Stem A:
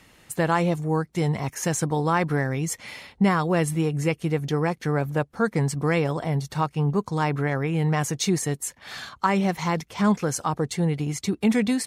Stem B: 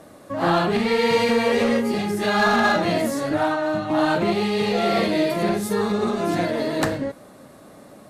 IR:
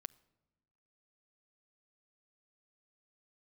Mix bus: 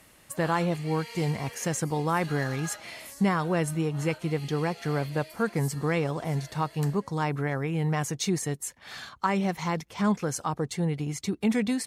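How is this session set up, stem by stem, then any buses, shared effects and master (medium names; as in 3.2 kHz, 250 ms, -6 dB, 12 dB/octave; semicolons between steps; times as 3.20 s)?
-4.5 dB, 0.00 s, send -23 dB, none
-15.5 dB, 0.00 s, send -17 dB, Bessel high-pass 370 Hz; tilt EQ +4.5 dB/octave; band-stop 3.7 kHz, Q 7.2; auto duck -10 dB, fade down 0.85 s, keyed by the first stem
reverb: on, RT60 1.1 s, pre-delay 7 ms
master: none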